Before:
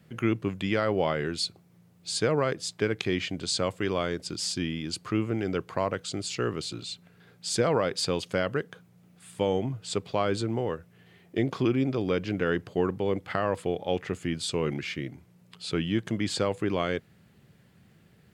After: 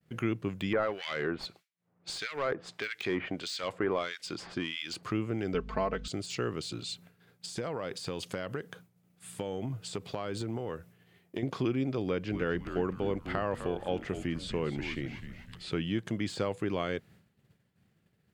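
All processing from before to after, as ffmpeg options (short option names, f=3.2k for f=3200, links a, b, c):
-filter_complex "[0:a]asettb=1/sr,asplit=3[a][b][c];[a]atrim=end=0.734[d];[b]atrim=start=0.73:end=5.03,asetpts=PTS-STARTPTS,afade=t=in:d=0.004:c=qsin,afade=t=out:st=4.296:d=0.004:c=qsin,asplit=2[e][f];[f]highpass=f=720:p=1,volume=18dB,asoftclip=type=tanh:threshold=-9.5dB[g];[e][g]amix=inputs=2:normalize=0,lowpass=f=3k:p=1,volume=-6dB,acrossover=split=1800[h][i];[h]aeval=exprs='val(0)*(1-1/2+1/2*cos(2*PI*1.6*n/s))':c=same[j];[i]aeval=exprs='val(0)*(1-1/2-1/2*cos(2*PI*1.6*n/s))':c=same[k];[j][k]amix=inputs=2:normalize=0[l];[c]atrim=start=5.026[m];[d][l]acrossfade=d=0.004:c1=hsin:c2=qsin[n];[n][m]acrossfade=d=0.004:c1=qsin:c2=hsin,asettb=1/sr,asplit=3[o][p][q];[o]atrim=end=5.544[r];[p]atrim=start=5.54:end=6.08,asetpts=PTS-STARTPTS,afade=t=in:d=0.004:c=qsin,afade=t=out:st=0.536:d=0.004:c=qsin,lowpass=4.7k,aeval=exprs='val(0)+0.01*(sin(2*PI*50*n/s)+sin(2*PI*2*50*n/s)/2+sin(2*PI*3*50*n/s)/3+sin(2*PI*4*50*n/s)/4+sin(2*PI*5*50*n/s)/5)':c=same,aecho=1:1:4.6:0.78,atrim=end_sample=23814[s];[q]atrim=start=6.076[t];[r][s]acrossfade=d=0.004:c1=hsin:c2=qsin[u];[u][t]acrossfade=d=0.004:c1=qsin:c2=hsin,asettb=1/sr,asplit=3[v][w][x];[v]atrim=end=6.894[y];[w]atrim=start=6.89:end=11.43,asetpts=PTS-STARTPTS,afade=t=in:d=0.004:c=qsin,afade=t=out:st=4.536:d=0.004:c=qsin,highshelf=f=9.5k:g=7.5,acompressor=threshold=-28dB:ratio=6:attack=3.2:release=140:knee=1:detection=peak[z];[x]atrim=start=11.426[aa];[y][z]acrossfade=d=0.004:c1=hsin:c2=qsin[ab];[ab][aa]acrossfade=d=0.004:c1=qsin:c2=hsin,asettb=1/sr,asplit=3[ac][ad][ae];[ac]atrim=end=12.064[af];[ad]atrim=start=12.06:end=15.72,asetpts=PTS-STARTPTS,afade=t=in:d=0.004:c=qsin,afade=t=out:st=3.656:d=0.004:c=qsin,acrossover=split=3200[ag][ah];[ah]acompressor=threshold=-47dB:ratio=4:attack=1:release=60[ai];[ag][ai]amix=inputs=2:normalize=0,asplit=5[aj][ak][al][am][an];[ak]adelay=253,afreqshift=-130,volume=-11dB[ao];[al]adelay=506,afreqshift=-260,volume=-18.5dB[ap];[am]adelay=759,afreqshift=-390,volume=-26.1dB[aq];[an]adelay=1012,afreqshift=-520,volume=-33.6dB[ar];[aj][ao][ap][aq][ar]amix=inputs=5:normalize=0,atrim=end_sample=161406[as];[ae]atrim=start=15.716[at];[af][as]acrossfade=d=0.004:c1=hsin:c2=qsin[au];[au][at]acrossfade=d=0.004:c1=qsin:c2=hsin,deesser=0.85,agate=range=-33dB:threshold=-49dB:ratio=3:detection=peak,acompressor=threshold=-35dB:ratio=1.5"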